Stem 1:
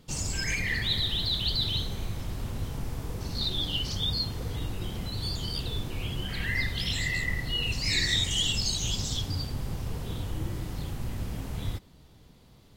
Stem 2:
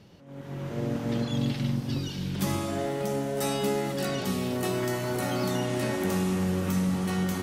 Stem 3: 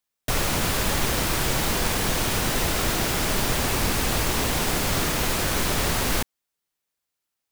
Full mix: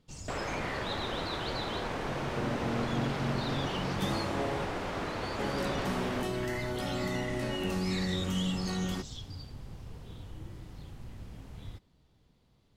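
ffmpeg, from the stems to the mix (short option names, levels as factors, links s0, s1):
-filter_complex "[0:a]volume=0.266[s0];[1:a]adelay=1600,volume=0.531,asplit=3[s1][s2][s3];[s1]atrim=end=4.65,asetpts=PTS-STARTPTS,afade=t=out:st=4.646:d=0.004:c=hsin[s4];[s2]atrim=start=4.65:end=5.39,asetpts=PTS-STARTPTS,volume=0[s5];[s3]atrim=start=5.39,asetpts=PTS-STARTPTS,afade=t=in:d=0.004:c=hsin[s6];[s4][s5][s6]concat=n=3:v=0:a=1[s7];[2:a]bandpass=f=630:t=q:w=0.5:csg=0,volume=0.473[s8];[s0][s7][s8]amix=inputs=3:normalize=0,highshelf=f=10000:g=-12"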